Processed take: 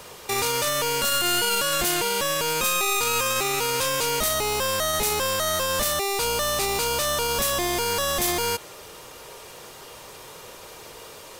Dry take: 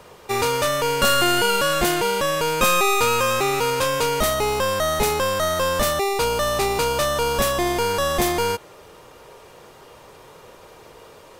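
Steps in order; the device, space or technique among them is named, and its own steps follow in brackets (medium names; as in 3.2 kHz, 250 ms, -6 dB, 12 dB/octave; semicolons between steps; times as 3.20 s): treble shelf 2.6 kHz +11.5 dB; limiter into clipper (peak limiter -12.5 dBFS, peak gain reduction 13 dB; hard clipper -16 dBFS, distortion -19 dB)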